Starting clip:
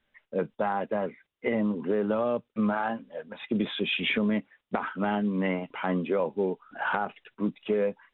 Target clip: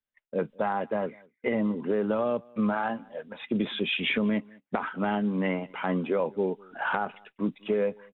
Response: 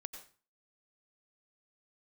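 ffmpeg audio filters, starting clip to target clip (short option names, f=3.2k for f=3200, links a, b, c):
-filter_complex "[0:a]agate=range=-22dB:threshold=-51dB:ratio=16:detection=peak,asplit=2[a][b];[b]adelay=198.3,volume=-26dB,highshelf=f=4k:g=-4.46[c];[a][c]amix=inputs=2:normalize=0"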